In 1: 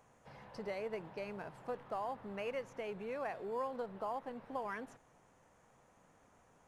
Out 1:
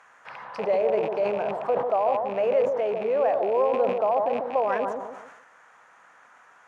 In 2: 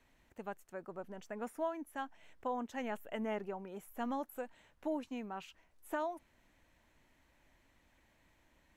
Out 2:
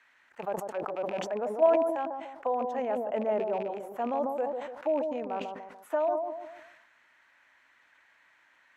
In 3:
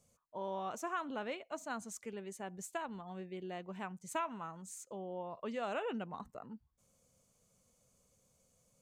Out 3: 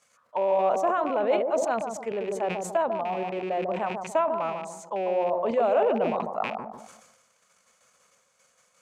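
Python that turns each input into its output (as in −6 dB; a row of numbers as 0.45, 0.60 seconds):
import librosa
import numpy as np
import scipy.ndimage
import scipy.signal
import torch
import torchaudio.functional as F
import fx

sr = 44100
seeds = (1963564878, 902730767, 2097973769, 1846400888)

p1 = fx.rattle_buzz(x, sr, strikes_db=-54.0, level_db=-39.0)
p2 = fx.dynamic_eq(p1, sr, hz=120.0, q=1.4, threshold_db=-60.0, ratio=4.0, max_db=4)
p3 = fx.auto_wah(p2, sr, base_hz=590.0, top_hz=1600.0, q=2.4, full_db=-40.0, direction='down')
p4 = fx.level_steps(p3, sr, step_db=18)
p5 = p3 + (p4 * 10.0 ** (2.5 / 20.0))
p6 = fx.high_shelf(p5, sr, hz=2800.0, db=10.5)
p7 = p6 + fx.echo_bbd(p6, sr, ms=146, stages=1024, feedback_pct=30, wet_db=-5.5, dry=0)
p8 = fx.sustainer(p7, sr, db_per_s=48.0)
y = p8 * 10.0 ** (-12 / 20.0) / np.max(np.abs(p8))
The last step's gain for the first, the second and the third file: +16.5, +9.5, +15.0 decibels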